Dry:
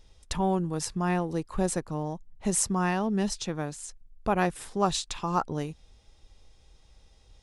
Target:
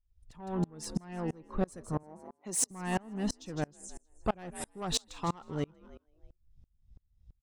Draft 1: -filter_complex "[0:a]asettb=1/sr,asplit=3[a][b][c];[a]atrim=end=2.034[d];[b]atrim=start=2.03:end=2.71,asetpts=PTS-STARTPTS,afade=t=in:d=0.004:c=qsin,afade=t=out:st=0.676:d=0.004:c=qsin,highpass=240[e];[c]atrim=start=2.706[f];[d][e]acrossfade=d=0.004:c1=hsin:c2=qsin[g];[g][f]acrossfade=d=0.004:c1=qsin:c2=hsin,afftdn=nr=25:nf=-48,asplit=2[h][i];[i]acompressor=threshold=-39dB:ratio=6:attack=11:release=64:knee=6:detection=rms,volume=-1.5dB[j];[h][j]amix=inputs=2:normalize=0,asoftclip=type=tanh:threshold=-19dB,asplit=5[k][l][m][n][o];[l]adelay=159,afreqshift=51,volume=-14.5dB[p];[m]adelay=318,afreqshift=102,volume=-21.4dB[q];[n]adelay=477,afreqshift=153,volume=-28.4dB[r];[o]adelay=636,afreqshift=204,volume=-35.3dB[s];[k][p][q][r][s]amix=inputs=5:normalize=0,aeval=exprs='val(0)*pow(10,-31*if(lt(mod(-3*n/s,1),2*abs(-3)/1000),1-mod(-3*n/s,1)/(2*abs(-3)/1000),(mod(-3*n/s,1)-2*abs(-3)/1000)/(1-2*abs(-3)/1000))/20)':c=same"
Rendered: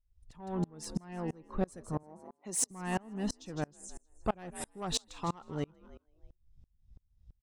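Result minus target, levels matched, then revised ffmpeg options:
compressor: peak gain reduction +10 dB
-filter_complex "[0:a]asettb=1/sr,asplit=3[a][b][c];[a]atrim=end=2.034[d];[b]atrim=start=2.03:end=2.71,asetpts=PTS-STARTPTS,afade=t=in:d=0.004:c=qsin,afade=t=out:st=0.676:d=0.004:c=qsin,highpass=240[e];[c]atrim=start=2.706[f];[d][e]acrossfade=d=0.004:c1=hsin:c2=qsin[g];[g][f]acrossfade=d=0.004:c1=qsin:c2=hsin,afftdn=nr=25:nf=-48,asplit=2[h][i];[i]acompressor=threshold=-27dB:ratio=6:attack=11:release=64:knee=6:detection=rms,volume=-1.5dB[j];[h][j]amix=inputs=2:normalize=0,asoftclip=type=tanh:threshold=-19dB,asplit=5[k][l][m][n][o];[l]adelay=159,afreqshift=51,volume=-14.5dB[p];[m]adelay=318,afreqshift=102,volume=-21.4dB[q];[n]adelay=477,afreqshift=153,volume=-28.4dB[r];[o]adelay=636,afreqshift=204,volume=-35.3dB[s];[k][p][q][r][s]amix=inputs=5:normalize=0,aeval=exprs='val(0)*pow(10,-31*if(lt(mod(-3*n/s,1),2*abs(-3)/1000),1-mod(-3*n/s,1)/(2*abs(-3)/1000),(mod(-3*n/s,1)-2*abs(-3)/1000)/(1-2*abs(-3)/1000))/20)':c=same"

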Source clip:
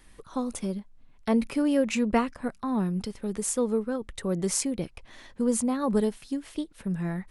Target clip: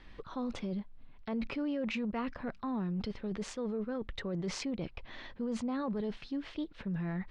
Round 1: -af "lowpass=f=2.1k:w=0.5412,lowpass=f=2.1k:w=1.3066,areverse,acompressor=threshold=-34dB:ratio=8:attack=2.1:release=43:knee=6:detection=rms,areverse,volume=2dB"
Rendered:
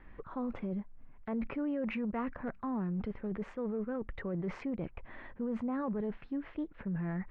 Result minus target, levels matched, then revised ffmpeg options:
4000 Hz band -13.5 dB
-af "lowpass=f=4.3k:w=0.5412,lowpass=f=4.3k:w=1.3066,areverse,acompressor=threshold=-34dB:ratio=8:attack=2.1:release=43:knee=6:detection=rms,areverse,volume=2dB"

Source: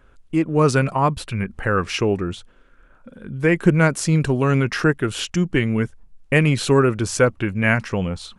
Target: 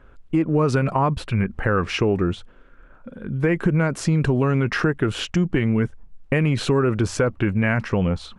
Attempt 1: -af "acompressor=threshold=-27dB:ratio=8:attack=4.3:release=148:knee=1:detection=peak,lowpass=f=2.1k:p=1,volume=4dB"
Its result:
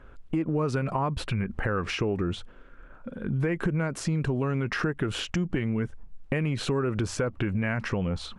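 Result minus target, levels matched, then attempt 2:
compressor: peak gain reduction +8 dB
-af "acompressor=threshold=-18dB:ratio=8:attack=4.3:release=148:knee=1:detection=peak,lowpass=f=2.1k:p=1,volume=4dB"

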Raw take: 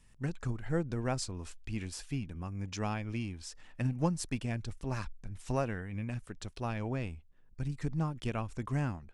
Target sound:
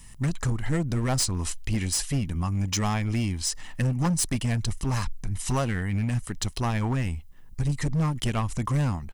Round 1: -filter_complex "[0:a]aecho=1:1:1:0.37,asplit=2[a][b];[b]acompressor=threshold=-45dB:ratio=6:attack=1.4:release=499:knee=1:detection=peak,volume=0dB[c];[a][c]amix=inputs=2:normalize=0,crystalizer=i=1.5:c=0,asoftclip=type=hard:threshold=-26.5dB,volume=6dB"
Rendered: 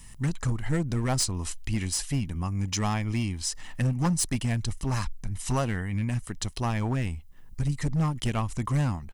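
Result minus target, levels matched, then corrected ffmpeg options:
compressor: peak gain reduction +10 dB
-filter_complex "[0:a]aecho=1:1:1:0.37,asplit=2[a][b];[b]acompressor=threshold=-33dB:ratio=6:attack=1.4:release=499:knee=1:detection=peak,volume=0dB[c];[a][c]amix=inputs=2:normalize=0,crystalizer=i=1.5:c=0,asoftclip=type=hard:threshold=-26.5dB,volume=6dB"

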